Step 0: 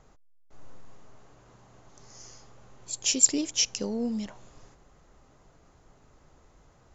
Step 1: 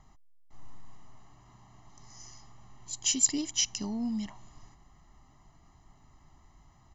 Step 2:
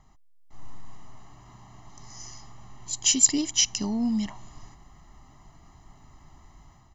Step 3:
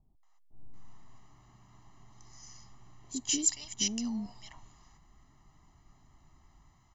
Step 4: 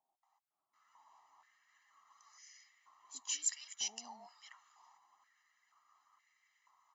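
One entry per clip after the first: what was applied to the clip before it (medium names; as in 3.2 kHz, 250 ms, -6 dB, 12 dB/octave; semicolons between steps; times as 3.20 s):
comb 1 ms, depth 98%; trim -5 dB
level rider gain up to 7 dB
bands offset in time lows, highs 230 ms, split 650 Hz; trim -9 dB
coarse spectral quantiser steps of 15 dB; step-sequenced high-pass 2.1 Hz 800–2000 Hz; trim -7.5 dB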